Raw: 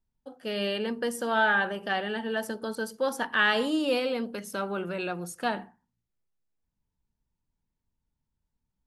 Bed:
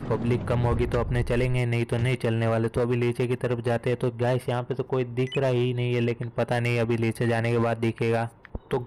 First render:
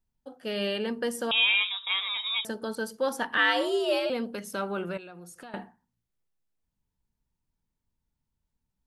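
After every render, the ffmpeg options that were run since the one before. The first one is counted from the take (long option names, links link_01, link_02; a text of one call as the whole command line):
ffmpeg -i in.wav -filter_complex "[0:a]asettb=1/sr,asplit=3[link_01][link_02][link_03];[link_01]atrim=end=1.314[link_04];[link_02]atrim=start=1.31:end=2.45,asetpts=PTS-STARTPTS,afade=type=in:duration=0.004:curve=qsin,afade=type=out:start_time=1.136:duration=0.004:curve=qsin,lowpass=frequency=3400:width_type=q:width=0.5098,lowpass=frequency=3400:width_type=q:width=0.6013,lowpass=frequency=3400:width_type=q:width=0.9,lowpass=frequency=3400:width_type=q:width=2.563,afreqshift=-4000[link_05];[link_03]atrim=start=2.446[link_06];[link_04][link_05]acrossfade=duration=0.004:curve1=hsin:curve2=qsin[link_07];[link_07][link_06]acrossfade=duration=0.004:curve1=qsin:curve2=hsin,asettb=1/sr,asplit=3[link_08][link_09][link_10];[link_08]atrim=end=3.374[link_11];[link_09]atrim=start=3.37:end=4.1,asetpts=PTS-STARTPTS,afade=type=in:duration=0.004:curve=qsin,afade=type=out:start_time=0.726:duration=0.004:curve=qsin,afreqshift=80[link_12];[link_10]atrim=start=4.096[link_13];[link_11][link_12]acrossfade=duration=0.004:curve1=hsin:curve2=qsin[link_14];[link_14][link_13]acrossfade=duration=0.004:curve1=qsin:curve2=hsin,asettb=1/sr,asplit=3[link_15][link_16][link_17];[link_15]atrim=end=4.974[link_18];[link_16]atrim=start=4.97:end=5.54,asetpts=PTS-STARTPTS,afade=type=in:duration=0.004:curve=qsin,afade=type=out:start_time=0.566:duration=0.004:curve=qsin,acompressor=threshold=-43dB:ratio=6:attack=3.2:release=140:knee=1:detection=peak[link_19];[link_17]atrim=start=5.536[link_20];[link_18][link_19]acrossfade=duration=0.004:curve1=hsin:curve2=qsin[link_21];[link_21][link_20]acrossfade=duration=0.004:curve1=qsin:curve2=hsin" out.wav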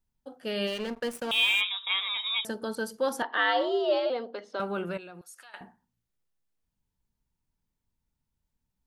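ffmpeg -i in.wav -filter_complex "[0:a]asplit=3[link_01][link_02][link_03];[link_01]afade=type=out:start_time=0.66:duration=0.02[link_04];[link_02]aeval=exprs='sgn(val(0))*max(abs(val(0))-0.0119,0)':channel_layout=same,afade=type=in:start_time=0.66:duration=0.02,afade=type=out:start_time=1.6:duration=0.02[link_05];[link_03]afade=type=in:start_time=1.6:duration=0.02[link_06];[link_04][link_05][link_06]amix=inputs=3:normalize=0,asettb=1/sr,asplit=3[link_07][link_08][link_09];[link_07]atrim=end=3.224[link_10];[link_08]atrim=start=3.22:end=4.6,asetpts=PTS-STARTPTS,afade=type=in:duration=0.004:curve=qsin,afade=type=out:start_time=1.376:duration=0.004:curve=qsin,highpass=frequency=320:width=0.5412,highpass=frequency=320:width=1.3066,equalizer=frequency=710:width_type=q:width=4:gain=5,equalizer=frequency=1600:width_type=q:width=4:gain=-3,equalizer=frequency=2500:width_type=q:width=4:gain=-10,lowpass=frequency=4300:width=0.5412,lowpass=frequency=4300:width=1.3066[link_11];[link_09]atrim=start=4.596[link_12];[link_10][link_11]acrossfade=duration=0.004:curve1=hsin:curve2=qsin[link_13];[link_13][link_12]acrossfade=duration=0.004:curve1=qsin:curve2=hsin,asettb=1/sr,asplit=3[link_14][link_15][link_16];[link_14]atrim=end=5.214[link_17];[link_15]atrim=start=5.21:end=5.61,asetpts=PTS-STARTPTS,afade=type=in:duration=0.004:curve=qsin,afade=type=out:start_time=0.396:duration=0.004:curve=qsin,highpass=1300[link_18];[link_16]atrim=start=5.606[link_19];[link_17][link_18]acrossfade=duration=0.004:curve1=hsin:curve2=qsin[link_20];[link_20][link_19]acrossfade=duration=0.004:curve1=qsin:curve2=hsin" out.wav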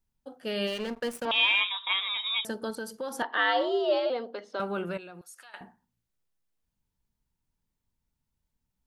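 ffmpeg -i in.wav -filter_complex "[0:a]asettb=1/sr,asplit=3[link_01][link_02][link_03];[link_01]atrim=end=1.254[link_04];[link_02]atrim=start=1.25:end=1.93,asetpts=PTS-STARTPTS,afade=type=in:duration=0.004:curve=qsin,afade=type=out:start_time=0.676:duration=0.004:curve=qsin,highpass=130,equalizer=frequency=200:width_type=q:width=4:gain=-5,equalizer=frequency=300:width_type=q:width=4:gain=6,equalizer=frequency=630:width_type=q:width=4:gain=6,equalizer=frequency=1000:width_type=q:width=4:gain=9,equalizer=frequency=1800:width_type=q:width=4:gain=4,lowpass=frequency=4400:width=0.5412,lowpass=frequency=4400:width=1.3066[link_05];[link_03]atrim=start=1.926[link_06];[link_04][link_05]acrossfade=duration=0.004:curve1=hsin:curve2=qsin[link_07];[link_07][link_06]acrossfade=duration=0.004:curve1=qsin:curve2=hsin,asettb=1/sr,asplit=3[link_08][link_09][link_10];[link_08]atrim=end=2.704[link_11];[link_09]atrim=start=2.7:end=3.19,asetpts=PTS-STARTPTS,afade=type=in:duration=0.004:curve=qsin,afade=type=out:start_time=0.486:duration=0.004:curve=qsin,acompressor=threshold=-33dB:ratio=3:attack=3.2:release=140:knee=1:detection=peak[link_12];[link_10]atrim=start=3.186[link_13];[link_11][link_12]acrossfade=duration=0.004:curve1=hsin:curve2=qsin[link_14];[link_14][link_13]acrossfade=duration=0.004:curve1=qsin:curve2=hsin" out.wav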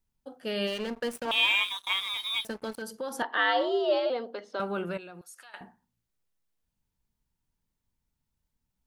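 ffmpeg -i in.wav -filter_complex "[0:a]asettb=1/sr,asplit=3[link_01][link_02][link_03];[link_01]atrim=end=1.164[link_04];[link_02]atrim=start=1.16:end=2.82,asetpts=PTS-STARTPTS,afade=type=in:duration=0.004:curve=qsin,afade=type=out:start_time=1.656:duration=0.004:curve=qsin,aeval=exprs='sgn(val(0))*max(abs(val(0))-0.00631,0)':channel_layout=same[link_05];[link_03]atrim=start=2.816[link_06];[link_04][link_05]acrossfade=duration=0.004:curve1=hsin:curve2=qsin[link_07];[link_07][link_06]acrossfade=duration=0.004:curve1=qsin:curve2=hsin" out.wav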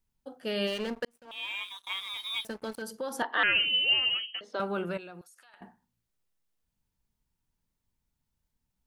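ffmpeg -i in.wav -filter_complex "[0:a]asettb=1/sr,asplit=3[link_01][link_02][link_03];[link_01]atrim=end=3.434[link_04];[link_02]atrim=start=3.43:end=4.41,asetpts=PTS-STARTPTS,afade=type=in:duration=0.004:curve=qsin,afade=type=out:start_time=0.976:duration=0.004:curve=qsin,lowpass=frequency=2900:width_type=q:width=0.5098,lowpass=frequency=2900:width_type=q:width=0.6013,lowpass=frequency=2900:width_type=q:width=0.9,lowpass=frequency=2900:width_type=q:width=2.563,afreqshift=-3400[link_05];[link_03]atrim=start=4.406[link_06];[link_04][link_05]acrossfade=duration=0.004:curve1=hsin:curve2=qsin[link_07];[link_07][link_06]acrossfade=duration=0.004:curve1=qsin:curve2=hsin,asettb=1/sr,asplit=3[link_08][link_09][link_10];[link_08]atrim=end=5.224[link_11];[link_09]atrim=start=5.22:end=5.62,asetpts=PTS-STARTPTS,afade=type=in:duration=0.004:curve=qsin,afade=type=out:start_time=0.396:duration=0.004:curve=qsin,acompressor=threshold=-54dB:ratio=6:attack=3.2:release=140:knee=1:detection=peak[link_12];[link_10]atrim=start=5.616[link_13];[link_11][link_12]acrossfade=duration=0.004:curve1=hsin:curve2=qsin[link_14];[link_14][link_13]acrossfade=duration=0.004:curve1=qsin:curve2=hsin,asplit=2[link_15][link_16];[link_15]atrim=end=1.05,asetpts=PTS-STARTPTS,afade=type=out:start_time=1.046:duration=0.004:curve=hsin[link_17];[link_16]atrim=start=1.05,asetpts=PTS-STARTPTS,afade=type=in:duration=1.86[link_18];[link_17][link_18]concat=n=2:v=0:a=1" out.wav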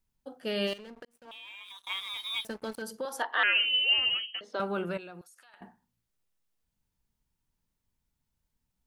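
ffmpeg -i in.wav -filter_complex "[0:a]asettb=1/sr,asplit=3[link_01][link_02][link_03];[link_01]atrim=end=0.734[link_04];[link_02]atrim=start=0.73:end=1.79,asetpts=PTS-STARTPTS,afade=type=in:duration=0.004:curve=qsin,afade=type=out:start_time=1.056:duration=0.004:curve=qsin,acompressor=threshold=-42dB:ratio=16:attack=3.2:release=140:knee=1:detection=peak[link_05];[link_03]atrim=start=1.786[link_06];[link_04][link_05]acrossfade=duration=0.004:curve1=hsin:curve2=qsin[link_07];[link_07][link_06]acrossfade=duration=0.004:curve1=qsin:curve2=hsin,asettb=1/sr,asplit=3[link_08][link_09][link_10];[link_08]atrim=end=3.054[link_11];[link_09]atrim=start=3.05:end=3.98,asetpts=PTS-STARTPTS,afade=type=in:duration=0.004:curve=qsin,afade=type=out:start_time=0.926:duration=0.004:curve=qsin,highpass=480[link_12];[link_10]atrim=start=3.976[link_13];[link_11][link_12]acrossfade=duration=0.004:curve1=hsin:curve2=qsin[link_14];[link_14][link_13]acrossfade=duration=0.004:curve1=qsin:curve2=hsin" out.wav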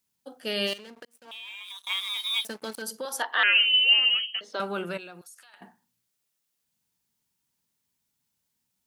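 ffmpeg -i in.wav -af "highpass=140,highshelf=frequency=2300:gain=9.5" out.wav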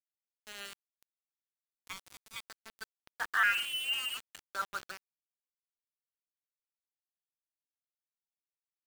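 ffmpeg -i in.wav -af "bandpass=frequency=1400:width_type=q:width=3.2:csg=0,aeval=exprs='val(0)*gte(abs(val(0)),0.0141)':channel_layout=same" out.wav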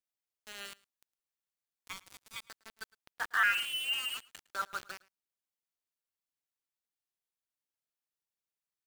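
ffmpeg -i in.wav -af "aecho=1:1:109:0.0708" out.wav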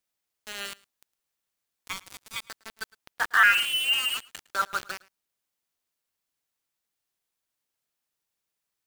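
ffmpeg -i in.wav -af "volume=9dB" out.wav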